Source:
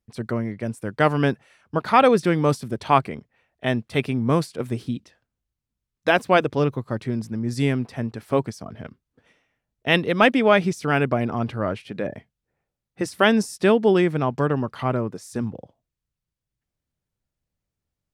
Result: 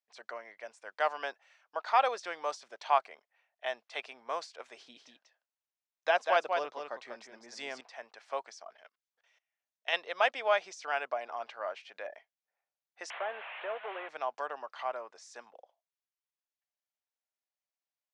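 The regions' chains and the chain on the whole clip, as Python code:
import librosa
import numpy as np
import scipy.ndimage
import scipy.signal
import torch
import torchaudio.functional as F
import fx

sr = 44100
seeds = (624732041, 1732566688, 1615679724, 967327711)

y = fx.chain(x, sr, fx.peak_eq(hz=180.0, db=8.5, octaves=2.1),
    fx.echo_single(ms=193, db=-5.5), at=(4.77, 7.81))
y = fx.chain(y, sr, fx.high_shelf(hz=3000.0, db=8.5),
    fx.level_steps(step_db=21), at=(8.77, 9.93))
y = fx.chain(y, sr, fx.delta_mod(bps=16000, step_db=-30.5),
    fx.highpass(hz=370.0, slope=12),
    fx.band_squash(depth_pct=40), at=(13.1, 14.09))
y = scipy.signal.sosfilt(scipy.signal.cheby1(3, 1.0, [660.0, 6600.0], 'bandpass', fs=sr, output='sos'), y)
y = fx.notch(y, sr, hz=1300.0, q=28.0)
y = fx.dynamic_eq(y, sr, hz=2200.0, q=1.1, threshold_db=-36.0, ratio=4.0, max_db=-4)
y = y * 10.0 ** (-7.0 / 20.0)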